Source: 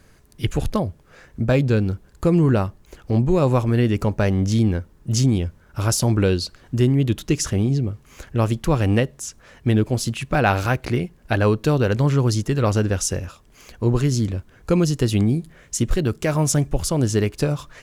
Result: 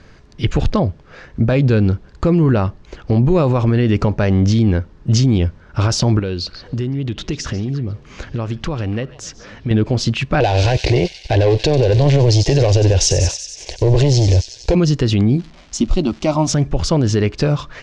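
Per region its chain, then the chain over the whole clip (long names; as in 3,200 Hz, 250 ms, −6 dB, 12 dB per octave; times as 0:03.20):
0:06.19–0:09.71: downward compressor 5 to 1, threshold −27 dBFS + echo through a band-pass that steps 144 ms, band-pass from 4,100 Hz, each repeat −1.4 octaves, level −11.5 dB
0:10.40–0:14.75: leveller curve on the samples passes 3 + phaser with its sweep stopped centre 530 Hz, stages 4 + delay with a high-pass on its return 93 ms, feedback 68%, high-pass 4,400 Hz, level −6 dB
0:15.36–0:16.47: phaser with its sweep stopped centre 450 Hz, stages 6 + surface crackle 390 per second −39 dBFS
whole clip: low-pass filter 5,500 Hz 24 dB per octave; brickwall limiter −14.5 dBFS; level +8.5 dB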